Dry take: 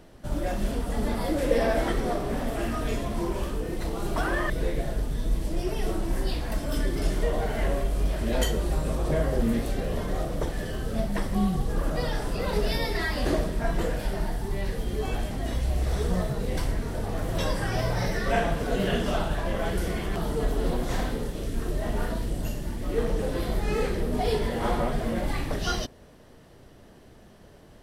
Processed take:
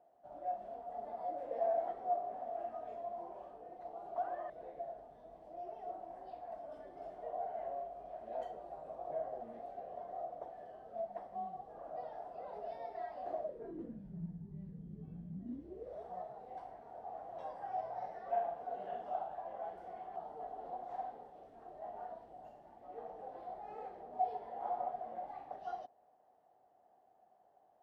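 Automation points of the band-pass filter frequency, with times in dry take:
band-pass filter, Q 13
13.40 s 710 Hz
14.05 s 170 Hz
15.33 s 170 Hz
16.06 s 750 Hz

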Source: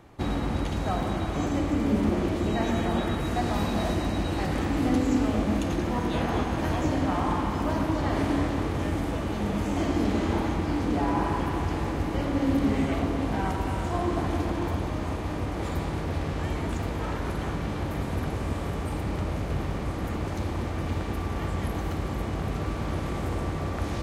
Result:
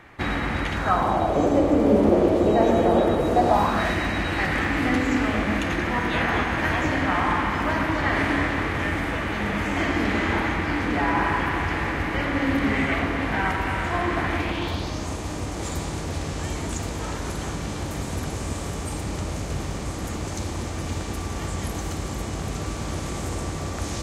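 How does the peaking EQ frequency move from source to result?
peaking EQ +15 dB 1.4 oct
0.72 s 1.9 kHz
1.40 s 520 Hz
3.41 s 520 Hz
3.88 s 1.9 kHz
14.33 s 1.9 kHz
15.10 s 7.2 kHz

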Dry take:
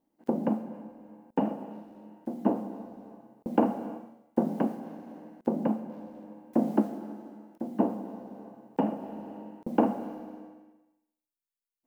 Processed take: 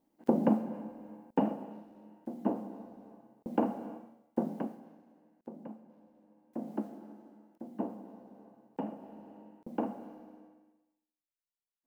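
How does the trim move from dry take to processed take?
1.09 s +1.5 dB
1.88 s -5.5 dB
4.43 s -5.5 dB
5.15 s -18 dB
6.28 s -18 dB
6.87 s -10 dB

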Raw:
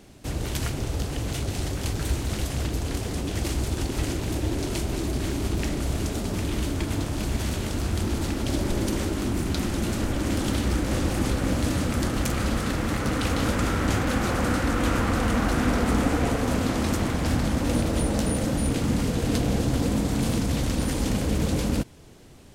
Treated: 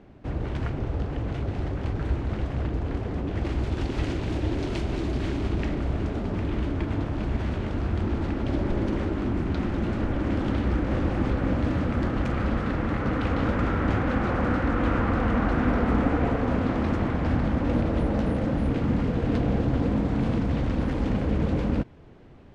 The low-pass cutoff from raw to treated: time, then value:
3.29 s 1.7 kHz
3.88 s 3.2 kHz
5.28 s 3.2 kHz
5.93 s 2 kHz

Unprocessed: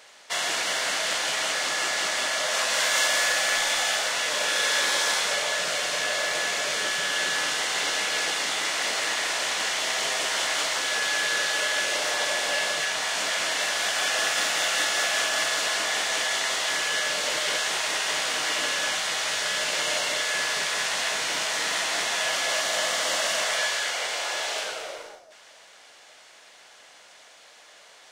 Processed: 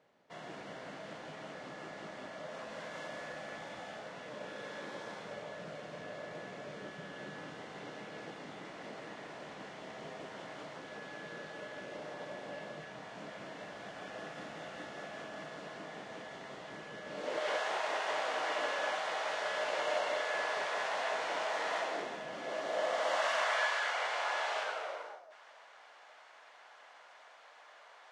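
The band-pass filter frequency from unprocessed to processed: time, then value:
band-pass filter, Q 1.2
17.03 s 160 Hz
17.49 s 670 Hz
21.78 s 670 Hz
22.26 s 200 Hz
23.29 s 1 kHz

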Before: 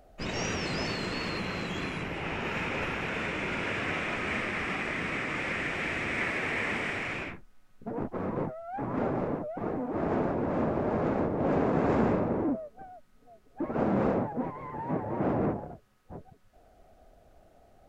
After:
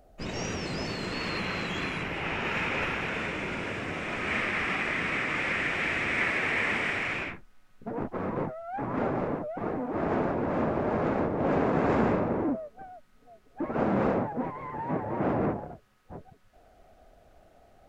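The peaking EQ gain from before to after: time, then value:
peaking EQ 2.1 kHz 2.7 oct
0.87 s -3.5 dB
1.41 s +4 dB
2.82 s +4 dB
3.92 s -5 dB
4.38 s +4 dB

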